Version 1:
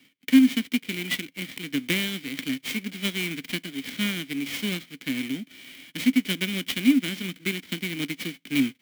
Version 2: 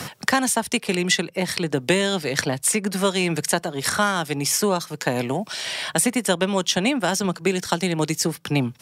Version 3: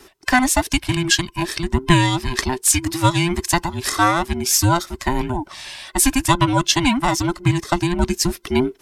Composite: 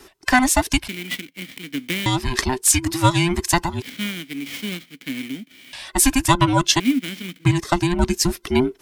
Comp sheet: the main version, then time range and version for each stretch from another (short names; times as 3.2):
3
0.88–2.06 from 1
3.82–5.73 from 1
6.8–7.45 from 1
not used: 2